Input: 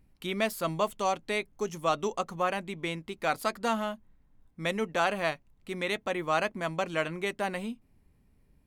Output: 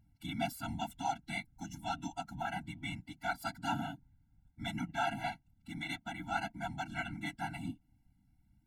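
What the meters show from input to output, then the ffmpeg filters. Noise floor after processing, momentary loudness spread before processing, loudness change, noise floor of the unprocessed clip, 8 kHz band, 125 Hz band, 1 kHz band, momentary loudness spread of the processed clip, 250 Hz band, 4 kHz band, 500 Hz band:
-72 dBFS, 8 LU, -8.0 dB, -66 dBFS, -7.5 dB, -3.0 dB, -6.5 dB, 7 LU, -5.5 dB, -7.0 dB, -15.5 dB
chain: -af "afftfilt=real='hypot(re,im)*cos(2*PI*random(0))':imag='hypot(re,im)*sin(2*PI*random(1))':win_size=512:overlap=0.75,afftfilt=real='re*eq(mod(floor(b*sr/1024/330),2),0)':imag='im*eq(mod(floor(b*sr/1024/330),2),0)':win_size=1024:overlap=0.75,volume=1.19"

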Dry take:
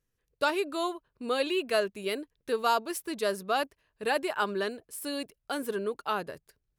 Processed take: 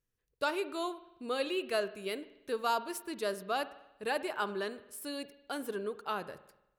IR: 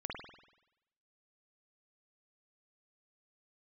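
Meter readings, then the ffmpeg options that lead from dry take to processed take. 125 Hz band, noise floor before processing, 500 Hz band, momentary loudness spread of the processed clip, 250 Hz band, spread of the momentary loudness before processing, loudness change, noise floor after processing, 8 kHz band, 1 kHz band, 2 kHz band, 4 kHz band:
no reading, -81 dBFS, -5.0 dB, 9 LU, -5.0 dB, 9 LU, -5.0 dB, -83 dBFS, -5.0 dB, -5.0 dB, -5.0 dB, -5.0 dB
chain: -filter_complex "[0:a]asplit=2[s0][s1];[1:a]atrim=start_sample=2205[s2];[s1][s2]afir=irnorm=-1:irlink=0,volume=0.251[s3];[s0][s3]amix=inputs=2:normalize=0,volume=0.473"

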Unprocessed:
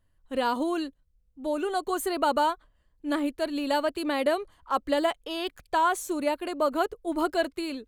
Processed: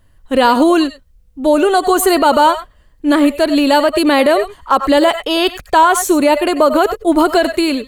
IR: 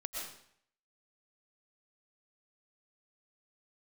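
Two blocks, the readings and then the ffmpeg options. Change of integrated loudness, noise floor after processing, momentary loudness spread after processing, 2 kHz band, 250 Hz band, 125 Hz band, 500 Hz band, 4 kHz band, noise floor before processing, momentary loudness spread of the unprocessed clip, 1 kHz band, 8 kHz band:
+15.5 dB, -50 dBFS, 5 LU, +15.0 dB, +17.0 dB, no reading, +15.0 dB, +16.0 dB, -68 dBFS, 7 LU, +14.5 dB, +17.5 dB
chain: -filter_complex "[1:a]atrim=start_sample=2205,atrim=end_sample=4410[s0];[0:a][s0]afir=irnorm=-1:irlink=0,alimiter=level_in=12.6:limit=0.891:release=50:level=0:latency=1,volume=0.891"

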